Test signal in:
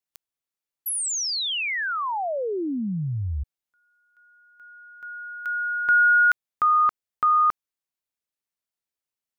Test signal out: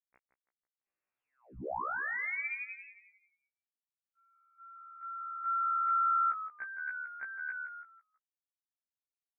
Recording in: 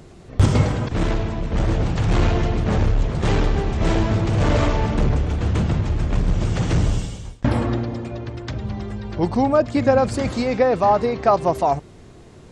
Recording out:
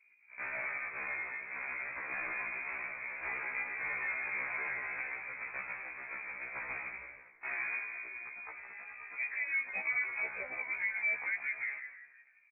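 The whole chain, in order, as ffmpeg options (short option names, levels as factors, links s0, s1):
-filter_complex "[0:a]highpass=f=400:w=0.5412,highpass=f=400:w=1.3066,anlmdn=0.0251,acompressor=threshold=0.0794:ratio=10:attack=0.46:release=45:knee=1:detection=peak,acrusher=bits=11:mix=0:aa=0.000001,asplit=5[s0][s1][s2][s3][s4];[s1]adelay=164,afreqshift=75,volume=0.335[s5];[s2]adelay=328,afreqshift=150,volume=0.127[s6];[s3]adelay=492,afreqshift=225,volume=0.0484[s7];[s4]adelay=656,afreqshift=300,volume=0.0184[s8];[s0][s5][s6][s7][s8]amix=inputs=5:normalize=0,lowpass=f=2400:t=q:w=0.5098,lowpass=f=2400:t=q:w=0.6013,lowpass=f=2400:t=q:w=0.9,lowpass=f=2400:t=q:w=2.563,afreqshift=-2800,afftfilt=real='re*1.73*eq(mod(b,3),0)':imag='im*1.73*eq(mod(b,3),0)':win_size=2048:overlap=0.75,volume=0.447"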